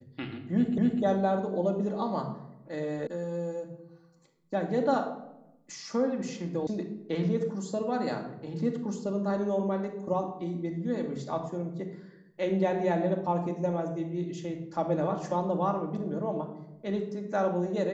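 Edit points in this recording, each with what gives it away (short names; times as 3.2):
0.78 repeat of the last 0.25 s
3.07 sound cut off
6.67 sound cut off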